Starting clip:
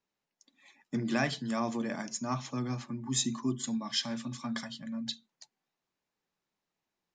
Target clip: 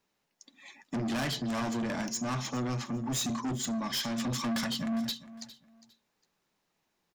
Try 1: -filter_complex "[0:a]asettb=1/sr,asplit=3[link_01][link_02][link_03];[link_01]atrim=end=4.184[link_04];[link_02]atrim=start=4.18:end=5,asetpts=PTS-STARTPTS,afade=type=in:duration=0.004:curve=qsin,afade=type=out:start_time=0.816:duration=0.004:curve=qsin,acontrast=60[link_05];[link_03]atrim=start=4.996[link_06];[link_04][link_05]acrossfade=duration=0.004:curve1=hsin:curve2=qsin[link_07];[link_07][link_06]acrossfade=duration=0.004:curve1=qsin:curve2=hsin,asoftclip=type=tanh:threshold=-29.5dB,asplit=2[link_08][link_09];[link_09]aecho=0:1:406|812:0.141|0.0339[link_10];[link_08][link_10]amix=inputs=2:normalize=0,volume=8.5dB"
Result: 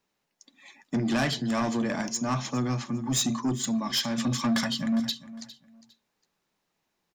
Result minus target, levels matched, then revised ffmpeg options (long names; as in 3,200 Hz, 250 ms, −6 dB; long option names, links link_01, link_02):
soft clipping: distortion −6 dB
-filter_complex "[0:a]asettb=1/sr,asplit=3[link_01][link_02][link_03];[link_01]atrim=end=4.184[link_04];[link_02]atrim=start=4.18:end=5,asetpts=PTS-STARTPTS,afade=type=in:duration=0.004:curve=qsin,afade=type=out:start_time=0.816:duration=0.004:curve=qsin,acontrast=60[link_05];[link_03]atrim=start=4.996[link_06];[link_04][link_05]acrossfade=duration=0.004:curve1=hsin:curve2=qsin[link_07];[link_07][link_06]acrossfade=duration=0.004:curve1=qsin:curve2=hsin,asoftclip=type=tanh:threshold=-38dB,asplit=2[link_08][link_09];[link_09]aecho=0:1:406|812:0.141|0.0339[link_10];[link_08][link_10]amix=inputs=2:normalize=0,volume=8.5dB"